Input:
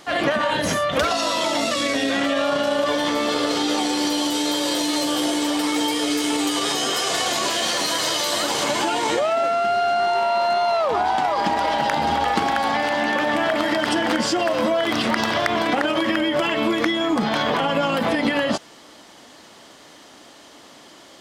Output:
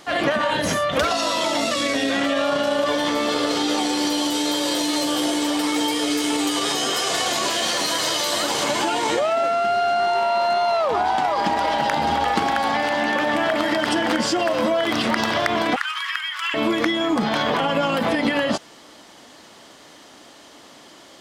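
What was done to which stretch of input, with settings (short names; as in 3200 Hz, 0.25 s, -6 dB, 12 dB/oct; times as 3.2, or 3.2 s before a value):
15.76–16.54 steep high-pass 1100 Hz 48 dB/oct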